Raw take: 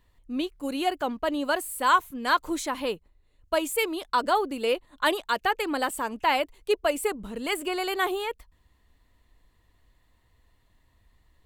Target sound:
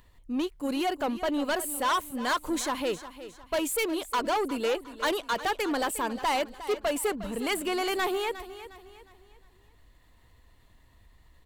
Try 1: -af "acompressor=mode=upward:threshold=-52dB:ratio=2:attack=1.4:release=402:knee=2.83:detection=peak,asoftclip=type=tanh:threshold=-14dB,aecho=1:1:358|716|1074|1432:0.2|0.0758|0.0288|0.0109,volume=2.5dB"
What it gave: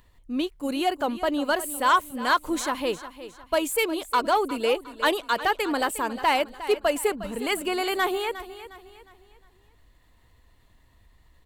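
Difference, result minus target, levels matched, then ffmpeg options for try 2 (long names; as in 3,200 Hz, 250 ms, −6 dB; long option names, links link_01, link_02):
soft clipping: distortion −12 dB
-af "acompressor=mode=upward:threshold=-52dB:ratio=2:attack=1.4:release=402:knee=2.83:detection=peak,asoftclip=type=tanh:threshold=-25.5dB,aecho=1:1:358|716|1074|1432:0.2|0.0758|0.0288|0.0109,volume=2.5dB"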